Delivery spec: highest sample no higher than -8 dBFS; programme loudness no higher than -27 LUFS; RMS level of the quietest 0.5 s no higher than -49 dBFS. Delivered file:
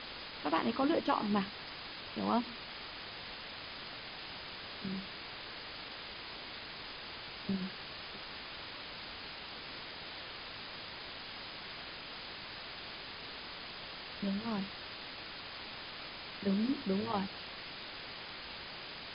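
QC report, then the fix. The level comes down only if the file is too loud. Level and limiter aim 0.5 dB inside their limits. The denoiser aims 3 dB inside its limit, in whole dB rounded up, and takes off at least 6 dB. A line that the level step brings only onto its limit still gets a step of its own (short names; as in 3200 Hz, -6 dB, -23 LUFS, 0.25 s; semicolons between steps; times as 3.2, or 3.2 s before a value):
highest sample -17.5 dBFS: OK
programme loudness -40.0 LUFS: OK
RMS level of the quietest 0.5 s -46 dBFS: fail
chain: denoiser 6 dB, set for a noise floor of -46 dBFS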